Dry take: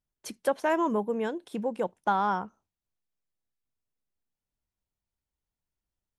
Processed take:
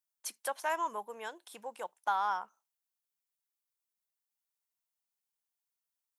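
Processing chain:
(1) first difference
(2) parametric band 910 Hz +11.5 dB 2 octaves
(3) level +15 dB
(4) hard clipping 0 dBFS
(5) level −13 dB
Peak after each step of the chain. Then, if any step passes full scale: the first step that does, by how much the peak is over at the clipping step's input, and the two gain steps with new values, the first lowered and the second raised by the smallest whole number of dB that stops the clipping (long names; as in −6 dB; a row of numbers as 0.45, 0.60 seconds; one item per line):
−27.5, −20.0, −5.0, −5.0, −18.0 dBFS
no step passes full scale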